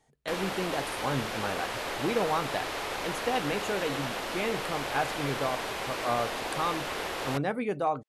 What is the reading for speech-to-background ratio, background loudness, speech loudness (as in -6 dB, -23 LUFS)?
0.0 dB, -33.5 LUFS, -33.5 LUFS